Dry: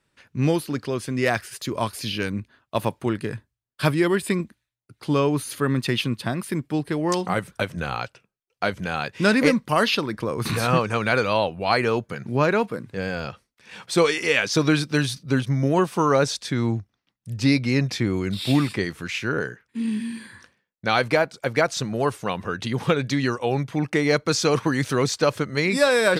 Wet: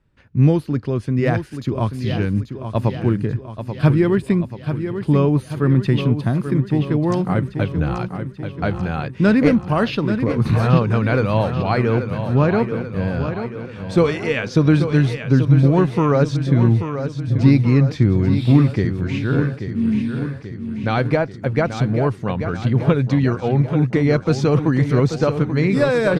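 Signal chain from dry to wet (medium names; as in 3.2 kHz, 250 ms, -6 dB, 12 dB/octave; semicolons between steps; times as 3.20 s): RIAA curve playback; on a send: feedback delay 835 ms, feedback 56%, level -9 dB; on the sum: trim -1 dB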